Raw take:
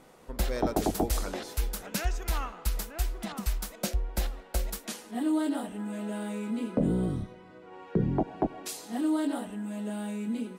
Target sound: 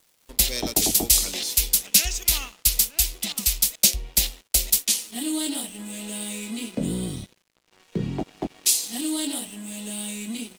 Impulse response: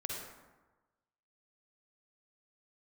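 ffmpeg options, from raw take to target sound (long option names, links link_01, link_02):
-filter_complex "[0:a]lowshelf=frequency=140:gain=-4,acrossover=split=340|760|4900[link_01][link_02][link_03][link_04];[link_01]acontrast=42[link_05];[link_05][link_02][link_03][link_04]amix=inputs=4:normalize=0,aexciter=amount=11.4:drive=3:freq=2200,aeval=exprs='sgn(val(0))*max(abs(val(0))-0.01,0)':channel_layout=same,volume=-3dB"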